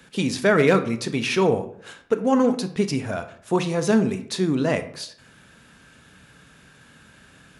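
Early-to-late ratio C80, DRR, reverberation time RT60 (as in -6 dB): 16.5 dB, 9.5 dB, 0.65 s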